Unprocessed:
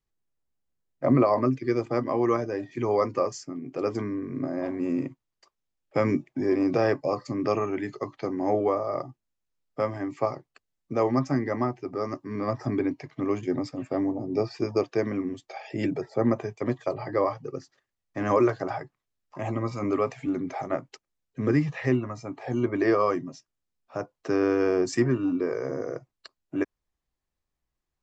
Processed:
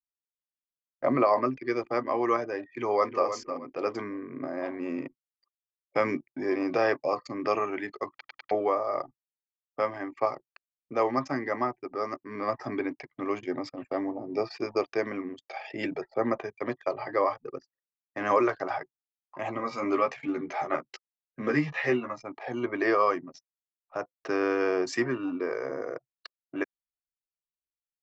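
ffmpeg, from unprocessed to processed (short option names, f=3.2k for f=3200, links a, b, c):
-filter_complex "[0:a]asplit=2[a][b];[b]afade=t=in:st=2.7:d=0.01,afade=t=out:st=3.26:d=0.01,aecho=0:1:310|620|930:0.334965|0.10049|0.0301469[c];[a][c]amix=inputs=2:normalize=0,asettb=1/sr,asplit=3[d][e][f];[d]atrim=end=19.584[g];[e]atrim=start=19.58:end=22.18,asetpts=PTS-STARTPTS,afade=t=in:d=0.004:c=qsin,afade=t=out:st=2.596:d=0.004:c=qsin,asplit=2[h][i];[i]adelay=13,volume=-2dB[j];[h][j]amix=inputs=2:normalize=0,atrim=end_sample=114660[k];[f]atrim=start=22.176[l];[g][k]acrossfade=d=0.004:c1=hsin:c2=qsin[m];[m][l]acrossfade=d=0.004:c1=qsin:c2=hsin,asplit=5[n][o][p][q][r];[n]atrim=end=8.212[s];[o]atrim=start=8.108:end=8.212[t];[p]atrim=start=8.108:end=8.212[u];[q]atrim=start=8.108:end=8.212[v];[r]atrim=start=8.508[w];[s][t]acrossfade=d=0.004:c1=hsin:c2=hsin[x];[x][u]acrossfade=d=0.004:c1=hsin:c2=hsin[y];[y][v]acrossfade=d=0.004:c1=hsin:c2=hsin[z];[z][w]acrossfade=d=0.004:c1=hsin:c2=hsin,highpass=f=850:p=1,anlmdn=0.01,lowpass=4.5k,volume=4dB"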